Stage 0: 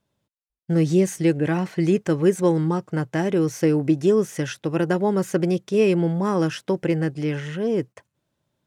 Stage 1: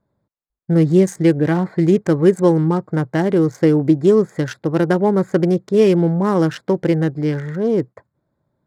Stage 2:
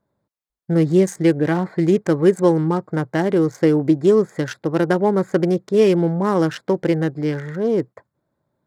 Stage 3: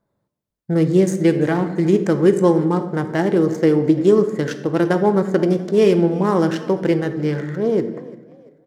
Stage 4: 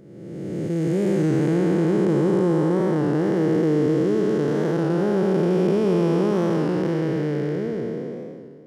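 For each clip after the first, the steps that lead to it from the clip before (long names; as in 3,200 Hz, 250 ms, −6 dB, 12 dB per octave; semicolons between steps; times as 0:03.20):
adaptive Wiener filter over 15 samples; notch filter 2,600 Hz, Q 10; level +5.5 dB
low-shelf EQ 190 Hz −6.5 dB
echo with shifted repeats 342 ms, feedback 40%, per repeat +40 Hz, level −20.5 dB; on a send at −8.5 dB: convolution reverb RT60 0.95 s, pre-delay 4 ms
spectrum smeared in time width 875 ms; wow of a warped record 33 1/3 rpm, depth 100 cents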